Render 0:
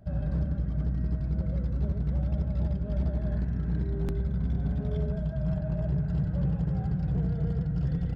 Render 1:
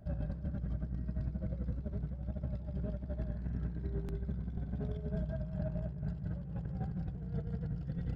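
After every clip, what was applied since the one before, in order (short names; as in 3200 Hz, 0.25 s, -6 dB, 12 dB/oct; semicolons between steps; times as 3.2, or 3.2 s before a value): negative-ratio compressor -31 dBFS, ratio -0.5; gain -5.5 dB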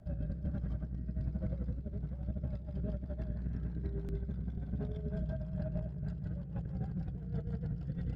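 rotary speaker horn 1.2 Hz, later 6.3 Hz, at 1.98; gain +1.5 dB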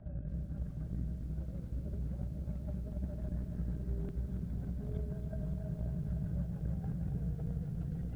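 negative-ratio compressor -39 dBFS, ratio -0.5; air absorption 370 m; lo-fi delay 0.278 s, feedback 80%, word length 11-bit, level -9 dB; gain +1 dB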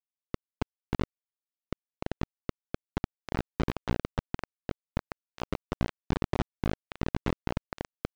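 bit-crush 5-bit; air absorption 140 m; gain +6.5 dB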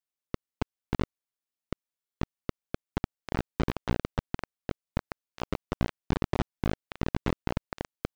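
stuck buffer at 1.99, samples 1024, times 8; gain +1 dB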